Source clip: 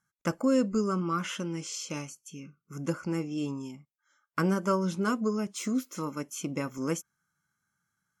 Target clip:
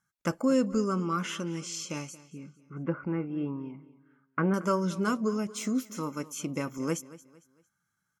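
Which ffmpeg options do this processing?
-filter_complex "[0:a]asettb=1/sr,asplit=3[a][b][c];[a]atrim=end=2.184[d];[b]atrim=start=2.18:end=4.54,asetpts=PTS-STARTPTS,afade=t=in:d=0.004:c=qsin,afade=t=out:st=2.356:d=0.004:c=qsin,lowpass=f=2.2k:w=0.5412,lowpass=f=2.2k:w=1.3066[e];[c]atrim=start=4.536[f];[d][e]acrossfade=d=0.004:c1=hsin:c2=qsin[g];[g][f]acrossfade=d=0.004:c1=qsin:c2=hsin,aecho=1:1:227|454|681:0.119|0.0428|0.0154"

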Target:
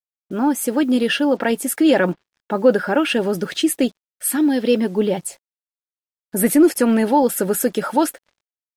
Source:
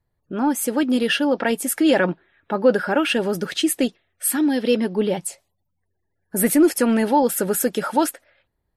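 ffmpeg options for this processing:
-af "equalizer=f=300:t=o:w=2.9:g=2.5,acrusher=bits=7:mix=0:aa=0.5"

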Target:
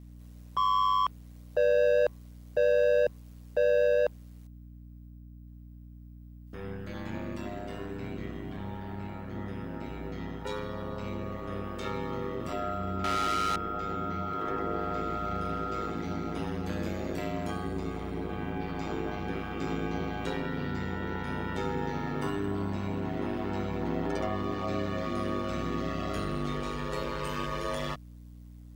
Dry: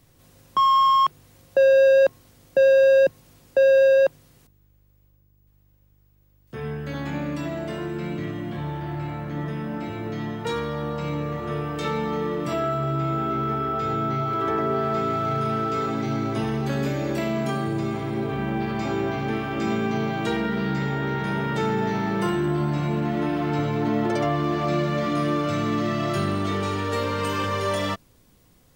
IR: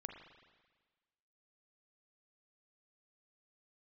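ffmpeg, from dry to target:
-filter_complex "[0:a]asettb=1/sr,asplit=3[a][b][c];[a]atrim=end=13.044[d];[b]atrim=start=13.04:end=13.56,asetpts=PTS-STARTPTS,afade=t=in:d=0.004:c=qsin,afade=t=out:st=0.516:d=0.004:c=qsin,asplit=2[e][f];[f]highpass=f=720:p=1,volume=27dB,asoftclip=type=tanh:threshold=-15dB[g];[e][g]amix=inputs=2:normalize=0,lowpass=f=7.4k:p=1,volume=-6dB[h];[c]atrim=start=13.556[i];[d][h]acrossfade=d=0.004:c1=hsin:c2=qsin[j];[j][i]acrossfade=d=0.004:c1=qsin:c2=hsin,aeval=exprs='val(0)*sin(2*PI*50*n/s)':c=same,aeval=exprs='val(0)+0.00891*(sin(2*PI*60*n/s)+sin(2*PI*2*60*n/s)/2+sin(2*PI*3*60*n/s)/3+sin(2*PI*4*60*n/s)/4+sin(2*PI*5*60*n/s)/5)':c=same,volume=-5.5dB"

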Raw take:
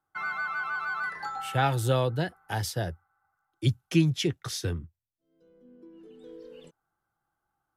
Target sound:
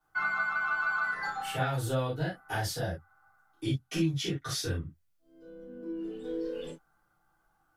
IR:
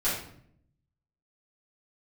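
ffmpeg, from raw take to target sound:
-filter_complex "[0:a]acompressor=threshold=-41dB:ratio=3[a];[1:a]atrim=start_sample=2205,atrim=end_sample=3528[b];[a][b]afir=irnorm=-1:irlink=0"

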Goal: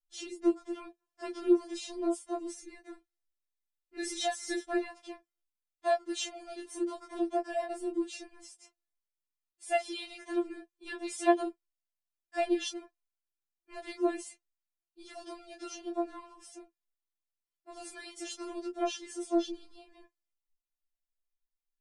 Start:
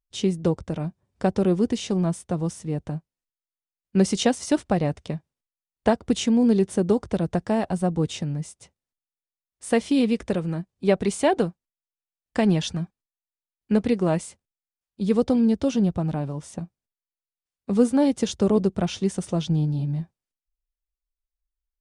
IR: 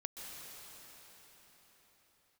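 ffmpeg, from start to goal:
-filter_complex "[0:a]asettb=1/sr,asplit=3[a][b][c];[a]atrim=end=2.504[d];[b]atrim=start=2.5:end=4.8,asetpts=PTS-STARTPTS,afade=t=in:d=0.004:c=qsin,afade=t=out:st=2.296:d=0.004:c=qsin,aecho=1:1:5.3:0.52,atrim=end_sample=101430[e];[c]atrim=start=4.796[f];[d][e]acrossfade=d=0.004:c1=hsin:c2=qsin[g];[g][f]acrossfade=d=0.004:c1=qsin:c2=hsin,flanger=delay=19:depth=4.8:speed=0.85,afftfilt=real='re*4*eq(mod(b,16),0)':imag='im*4*eq(mod(b,16),0)':win_size=2048:overlap=0.75,volume=-2dB"

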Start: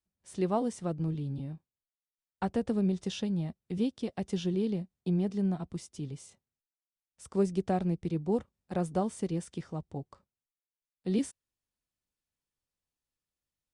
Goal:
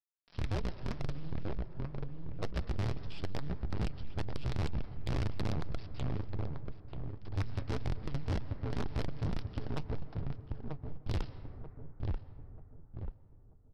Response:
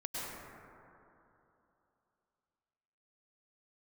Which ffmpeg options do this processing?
-filter_complex "[0:a]acompressor=threshold=-41dB:ratio=1.5,afreqshift=-300,aresample=11025,acrusher=bits=6:dc=4:mix=0:aa=0.000001,aresample=44100,lowshelf=f=120:g=7.5,asplit=2[a][b];[b]adelay=937,lowpass=f=1.1k:p=1,volume=-4.5dB,asplit=2[c][d];[d]adelay=937,lowpass=f=1.1k:p=1,volume=0.38,asplit=2[e][f];[f]adelay=937,lowpass=f=1.1k:p=1,volume=0.38,asplit=2[g][h];[h]adelay=937,lowpass=f=1.1k:p=1,volume=0.38,asplit=2[i][j];[j]adelay=937,lowpass=f=1.1k:p=1,volume=0.38[k];[a][c][e][g][i][k]amix=inputs=6:normalize=0,flanger=delay=1.1:depth=6.3:regen=65:speed=1.9:shape=sinusoidal,asplit=2[l][m];[1:a]atrim=start_sample=2205,adelay=21[n];[m][n]afir=irnorm=-1:irlink=0,volume=-19.5dB[o];[l][o]amix=inputs=2:normalize=0,asoftclip=type=tanh:threshold=-34.5dB,volume=6dB"

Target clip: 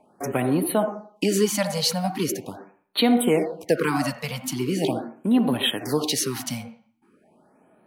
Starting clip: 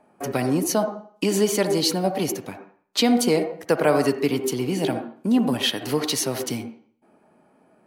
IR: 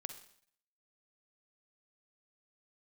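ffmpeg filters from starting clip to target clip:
-af "afftfilt=real='re*(1-between(b*sr/1024,320*pow(6500/320,0.5+0.5*sin(2*PI*0.41*pts/sr))/1.41,320*pow(6500/320,0.5+0.5*sin(2*PI*0.41*pts/sr))*1.41))':imag='im*(1-between(b*sr/1024,320*pow(6500/320,0.5+0.5*sin(2*PI*0.41*pts/sr))/1.41,320*pow(6500/320,0.5+0.5*sin(2*PI*0.41*pts/sr))*1.41))':win_size=1024:overlap=0.75"

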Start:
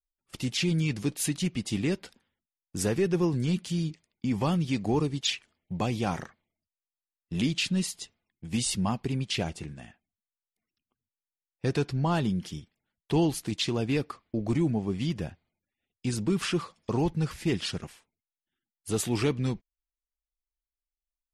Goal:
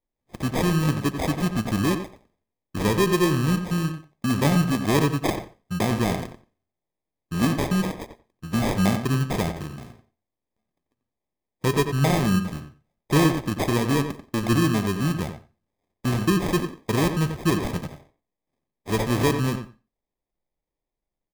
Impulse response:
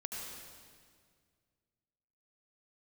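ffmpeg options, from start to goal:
-filter_complex "[0:a]flanger=delay=4.3:depth=6.5:regen=83:speed=0.85:shape=triangular,acrusher=samples=31:mix=1:aa=0.000001,asplit=2[a][b];[b]adelay=90,lowpass=f=2.8k:p=1,volume=-8dB,asplit=2[c][d];[d]adelay=90,lowpass=f=2.8k:p=1,volume=0.15[e];[a][c][e]amix=inputs=3:normalize=0,asplit=2[f][g];[1:a]atrim=start_sample=2205,atrim=end_sample=6615[h];[g][h]afir=irnorm=-1:irlink=0,volume=-18.5dB[i];[f][i]amix=inputs=2:normalize=0,volume=9dB"

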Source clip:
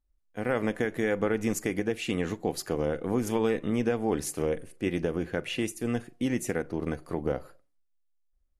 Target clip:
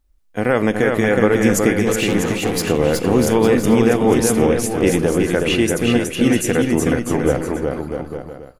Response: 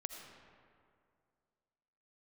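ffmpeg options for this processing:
-filter_complex "[0:a]asplit=2[a][b];[b]alimiter=limit=-22.5dB:level=0:latency=1,volume=-0.5dB[c];[a][c]amix=inputs=2:normalize=0,asettb=1/sr,asplit=3[d][e][f];[d]atrim=end=1.854[g];[e]atrim=start=1.85:end=2.69,asetpts=PTS-STARTPTS,afade=t=in:d=0.004:c=qsin,afade=t=out:st=0.836:d=0.004:c=qsin,asoftclip=type=hard:threshold=-25dB[h];[f]atrim=start=2.686[i];[g][h]acrossfade=d=0.004:c1=hsin:c2=qsin[j];[j][i]acrossfade=d=0.004:c1=qsin:c2=hsin,aecho=1:1:370|647.5|855.6|1012|1129:0.631|0.398|0.251|0.158|0.1,volume=7.5dB"

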